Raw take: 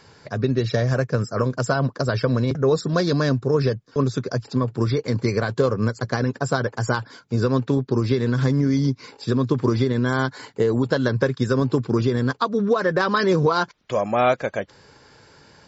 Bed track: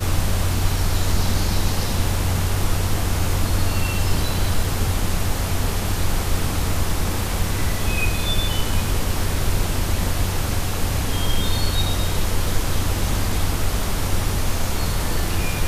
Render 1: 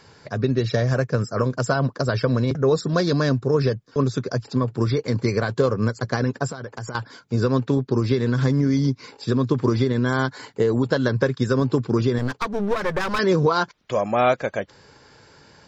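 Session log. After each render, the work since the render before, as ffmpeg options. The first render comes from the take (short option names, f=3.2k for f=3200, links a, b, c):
-filter_complex "[0:a]asettb=1/sr,asplit=3[a][b][c];[a]atrim=end=6.474[d];[b]atrim=start=6.47:end=6.95,asetpts=PTS-STARTPTS,afade=t=in:d=0.004:c=qsin,afade=t=out:st=0.476:d=0.004:c=qsin,acompressor=threshold=-28dB:ratio=10:attack=3.2:release=140:knee=1:detection=peak[e];[c]atrim=start=6.946[f];[d][e]acrossfade=d=0.004:c1=hsin:c2=qsin[g];[g][f]acrossfade=d=0.004:c1=qsin:c2=hsin,asettb=1/sr,asplit=3[h][i][j];[h]atrim=end=12.184[k];[i]atrim=start=12.18:end=13.19,asetpts=PTS-STARTPTS,afade=t=in:d=0.004:c=qsin,afade=t=out:st=1.006:d=0.004:c=qsin,aeval=exprs='clip(val(0),-1,0.0299)':c=same[l];[j]atrim=start=13.186[m];[k][l]acrossfade=d=0.004:c1=hsin:c2=qsin[n];[n][m]acrossfade=d=0.004:c1=qsin:c2=hsin"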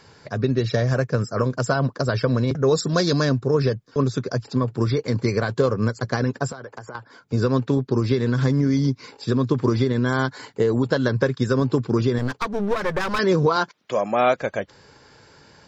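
-filter_complex "[0:a]asettb=1/sr,asplit=3[a][b][c];[a]atrim=end=2.634[d];[b]atrim=start=2.63:end=3.25,asetpts=PTS-STARTPTS,afade=t=in:d=0.004:c=qsin,afade=t=out:st=0.616:d=0.004:c=qsin,aemphasis=mode=production:type=50kf[e];[c]atrim=start=3.246[f];[d][e]acrossfade=d=0.004:c1=hsin:c2=qsin[g];[g][f]acrossfade=d=0.004:c1=qsin:c2=hsin,asettb=1/sr,asplit=3[h][i][j];[h]atrim=end=6.524[k];[i]atrim=start=6.52:end=7.33,asetpts=PTS-STARTPTS,afade=t=in:d=0.004:c=qsin,afade=t=out:st=0.806:d=0.004:c=qsin,acrossover=split=340|2000[l][m][n];[l]acompressor=threshold=-44dB:ratio=4[o];[m]acompressor=threshold=-32dB:ratio=4[p];[n]acompressor=threshold=-53dB:ratio=4[q];[o][p][q]amix=inputs=3:normalize=0[r];[j]atrim=start=7.326[s];[k][r]acrossfade=d=0.004:c1=hsin:c2=qsin[t];[t][s]acrossfade=d=0.004:c1=qsin:c2=hsin,asettb=1/sr,asplit=3[u][v][w];[u]atrim=end=13.564[x];[v]atrim=start=13.56:end=14.36,asetpts=PTS-STARTPTS,afade=t=in:d=0.004:c=qsin,afade=t=out:st=0.796:d=0.004:c=qsin,highpass=170[y];[w]atrim=start=14.356[z];[x][y]acrossfade=d=0.004:c1=hsin:c2=qsin[aa];[aa][z]acrossfade=d=0.004:c1=qsin:c2=hsin"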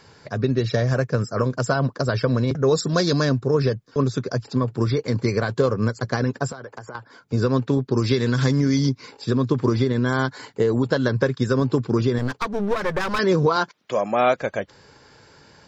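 -filter_complex "[0:a]asettb=1/sr,asplit=3[a][b][c];[a]atrim=end=7.974[d];[b]atrim=start=7.97:end=8.89,asetpts=PTS-STARTPTS,afade=t=in:d=0.004:c=qsin,afade=t=out:st=0.916:d=0.004:c=qsin,highshelf=f=2.1k:g=8.5[e];[c]atrim=start=8.886[f];[d][e]acrossfade=d=0.004:c1=hsin:c2=qsin[g];[g][f]acrossfade=d=0.004:c1=qsin:c2=hsin"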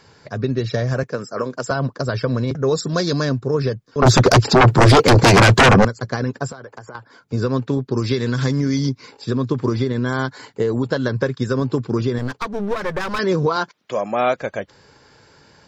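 -filter_complex "[0:a]asettb=1/sr,asplit=3[a][b][c];[a]atrim=end=1.034[d];[b]atrim=start=1.03:end=1.71,asetpts=PTS-STARTPTS,afade=t=in:d=0.004:c=qsin,afade=t=out:st=0.676:d=0.004:c=qsin,highpass=240[e];[c]atrim=start=1.706[f];[d][e]acrossfade=d=0.004:c1=hsin:c2=qsin[g];[g][f]acrossfade=d=0.004:c1=qsin:c2=hsin,asettb=1/sr,asplit=3[h][i][j];[h]atrim=end=4.024[k];[i]atrim=start=4.02:end=5.85,asetpts=PTS-STARTPTS,afade=t=in:d=0.004:c=qsin,afade=t=out:st=1.826:d=0.004:c=qsin,aeval=exprs='0.473*sin(PI/2*6.31*val(0)/0.473)':c=same[l];[j]atrim=start=5.846[m];[k][l]acrossfade=d=0.004:c1=hsin:c2=qsin[n];[n][m]acrossfade=d=0.004:c1=qsin:c2=hsin"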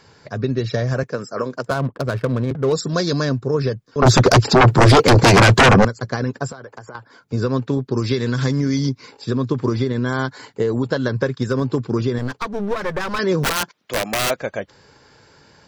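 -filter_complex "[0:a]asettb=1/sr,asplit=3[a][b][c];[a]atrim=end=1.624[d];[b]atrim=start=1.62:end=2.73,asetpts=PTS-STARTPTS,afade=t=in:d=0.004:c=qsin,afade=t=out:st=1.106:d=0.004:c=qsin,adynamicsmooth=sensitivity=3.5:basefreq=530[e];[c]atrim=start=2.726[f];[d][e]acrossfade=d=0.004:c1=hsin:c2=qsin[g];[g][f]acrossfade=d=0.004:c1=qsin:c2=hsin,asettb=1/sr,asplit=3[h][i][j];[h]atrim=end=11.304[k];[i]atrim=start=11.3:end=11.77,asetpts=PTS-STARTPTS,afade=t=in:d=0.004:c=qsin,afade=t=out:st=0.466:d=0.004:c=qsin,asoftclip=type=hard:threshold=-11dB[l];[j]atrim=start=11.766[m];[k][l]acrossfade=d=0.004:c1=hsin:c2=qsin[n];[n][m]acrossfade=d=0.004:c1=qsin:c2=hsin,asplit=3[o][p][q];[o]afade=t=out:st=13.43:d=0.02[r];[p]aeval=exprs='(mod(5.31*val(0)+1,2)-1)/5.31':c=same,afade=t=in:st=13.43:d=0.02,afade=t=out:st=14.29:d=0.02[s];[q]afade=t=in:st=14.29:d=0.02[t];[r][s][t]amix=inputs=3:normalize=0"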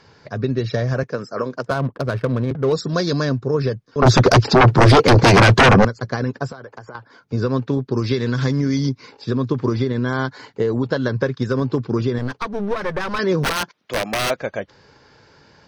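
-af "highshelf=f=9.8k:g=-10,bandreject=f=7.3k:w=7.4"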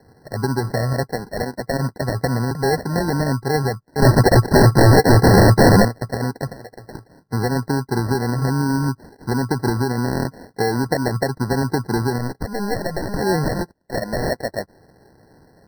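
-af "acrusher=samples=36:mix=1:aa=0.000001,afftfilt=real='re*eq(mod(floor(b*sr/1024/2000),2),0)':imag='im*eq(mod(floor(b*sr/1024/2000),2),0)':win_size=1024:overlap=0.75"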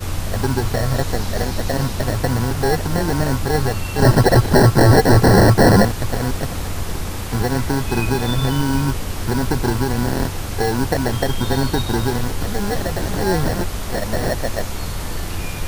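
-filter_complex "[1:a]volume=-3.5dB[a];[0:a][a]amix=inputs=2:normalize=0"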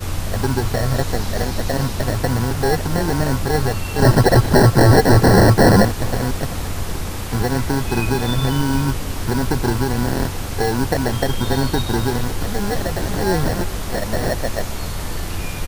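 -af "aecho=1:1:410:0.1"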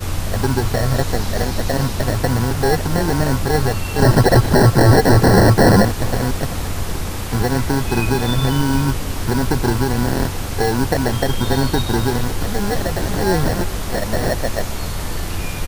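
-af "volume=1.5dB,alimiter=limit=-3dB:level=0:latency=1"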